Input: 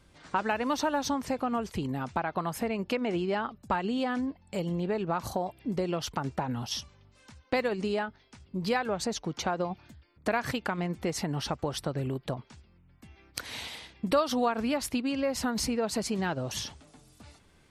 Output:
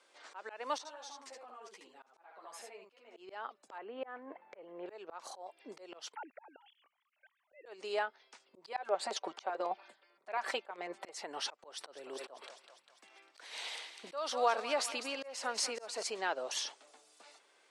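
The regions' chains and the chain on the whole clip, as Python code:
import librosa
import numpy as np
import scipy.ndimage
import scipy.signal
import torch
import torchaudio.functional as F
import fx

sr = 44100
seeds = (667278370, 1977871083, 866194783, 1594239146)

y = fx.chain(x, sr, fx.level_steps(step_db=22),
    fx.echo_single(ms=70, db=-3.5),
    fx.ensemble(), at=(0.78, 3.17))
y = fx.chain(y, sr, fx.lowpass(hz=2100.0, slope=24),
    fx.transient(attack_db=-2, sustain_db=11), at=(3.78, 4.86))
y = fx.chain(y, sr, fx.sine_speech(),
    fx.level_steps(step_db=20), at=(6.15, 7.66))
y = fx.chain(y, sr, fx.peak_eq(hz=630.0, db=6.5, octaves=1.8),
    fx.comb(ms=5.2, depth=0.45),
    fx.filter_lfo_notch(shape='square', hz=9.1, low_hz=470.0, high_hz=6000.0, q=1.4), at=(8.56, 11.15))
y = fx.chain(y, sr, fx.echo_thinned(ms=200, feedback_pct=66, hz=800.0, wet_db=-12.5),
    fx.sustainer(db_per_s=88.0), at=(11.7, 16.03))
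y = scipy.signal.sosfilt(scipy.signal.butter(4, 440.0, 'highpass', fs=sr, output='sos'), y)
y = fx.auto_swell(y, sr, attack_ms=313.0)
y = scipy.signal.sosfilt(scipy.signal.butter(6, 10000.0, 'lowpass', fs=sr, output='sos'), y)
y = y * librosa.db_to_amplitude(-1.5)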